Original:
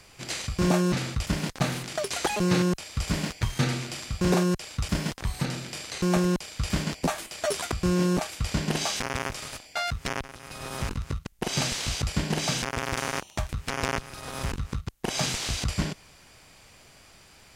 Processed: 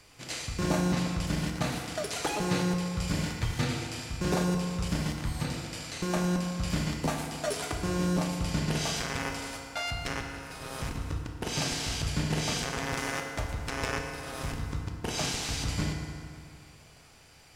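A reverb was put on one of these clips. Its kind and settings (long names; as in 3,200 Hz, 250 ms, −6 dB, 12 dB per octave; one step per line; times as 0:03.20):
feedback delay network reverb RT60 2.5 s, low-frequency decay 0.9×, high-frequency decay 0.6×, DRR 1.5 dB
level −5 dB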